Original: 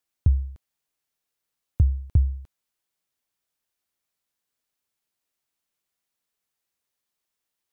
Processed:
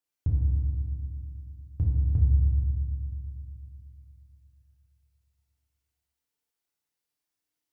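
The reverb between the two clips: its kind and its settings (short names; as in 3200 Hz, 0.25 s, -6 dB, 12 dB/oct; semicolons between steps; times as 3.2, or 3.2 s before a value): FDN reverb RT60 2.1 s, low-frequency decay 1.6×, high-frequency decay 0.95×, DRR -4 dB; gain -9 dB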